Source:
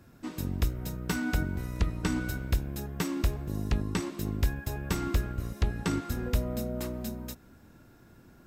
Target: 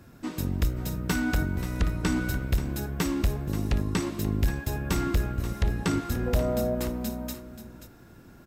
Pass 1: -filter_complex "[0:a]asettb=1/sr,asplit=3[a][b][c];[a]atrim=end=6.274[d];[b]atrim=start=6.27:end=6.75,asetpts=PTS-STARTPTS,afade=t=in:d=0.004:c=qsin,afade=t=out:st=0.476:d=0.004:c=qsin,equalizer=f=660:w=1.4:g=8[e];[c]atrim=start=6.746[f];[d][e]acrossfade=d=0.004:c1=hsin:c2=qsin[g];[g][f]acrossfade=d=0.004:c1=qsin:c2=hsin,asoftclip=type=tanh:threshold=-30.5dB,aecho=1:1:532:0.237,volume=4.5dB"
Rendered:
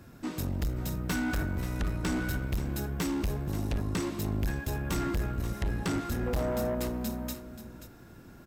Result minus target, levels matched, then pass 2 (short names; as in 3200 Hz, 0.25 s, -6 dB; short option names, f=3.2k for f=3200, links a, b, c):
soft clip: distortion +9 dB
-filter_complex "[0:a]asettb=1/sr,asplit=3[a][b][c];[a]atrim=end=6.274[d];[b]atrim=start=6.27:end=6.75,asetpts=PTS-STARTPTS,afade=t=in:d=0.004:c=qsin,afade=t=out:st=0.476:d=0.004:c=qsin,equalizer=f=660:w=1.4:g=8[e];[c]atrim=start=6.746[f];[d][e]acrossfade=d=0.004:c1=hsin:c2=qsin[g];[g][f]acrossfade=d=0.004:c1=qsin:c2=hsin,asoftclip=type=tanh:threshold=-20.5dB,aecho=1:1:532:0.237,volume=4.5dB"